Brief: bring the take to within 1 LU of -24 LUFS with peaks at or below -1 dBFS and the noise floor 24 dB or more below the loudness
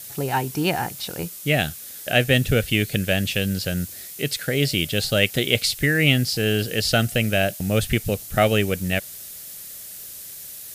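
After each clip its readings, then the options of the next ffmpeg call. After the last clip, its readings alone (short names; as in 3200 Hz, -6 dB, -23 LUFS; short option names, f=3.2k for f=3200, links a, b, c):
noise floor -38 dBFS; noise floor target -46 dBFS; loudness -22.0 LUFS; peak -2.0 dBFS; loudness target -24.0 LUFS
-> -af "afftdn=nr=8:nf=-38"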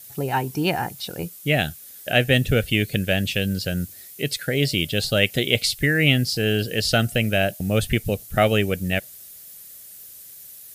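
noise floor -43 dBFS; noise floor target -46 dBFS
-> -af "afftdn=nr=6:nf=-43"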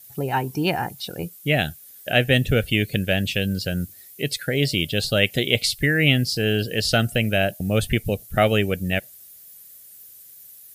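noise floor -46 dBFS; loudness -22.0 LUFS; peak -2.0 dBFS; loudness target -24.0 LUFS
-> -af "volume=-2dB"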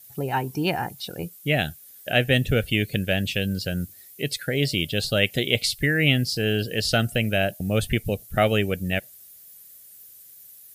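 loudness -24.0 LUFS; peak -4.0 dBFS; noise floor -48 dBFS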